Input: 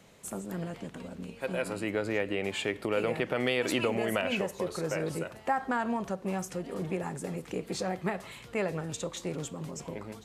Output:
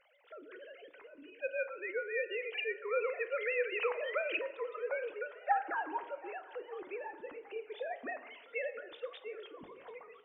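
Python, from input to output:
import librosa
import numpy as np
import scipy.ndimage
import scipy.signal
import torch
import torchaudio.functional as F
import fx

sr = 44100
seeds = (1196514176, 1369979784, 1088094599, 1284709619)

p1 = fx.sine_speech(x, sr)
p2 = fx.peak_eq(p1, sr, hz=280.0, db=-10.0, octaves=2.9)
p3 = p2 + fx.echo_swing(p2, sr, ms=1221, ratio=1.5, feedback_pct=33, wet_db=-21.5, dry=0)
y = fx.rev_fdn(p3, sr, rt60_s=1.3, lf_ratio=1.35, hf_ratio=0.45, size_ms=97.0, drr_db=11.0)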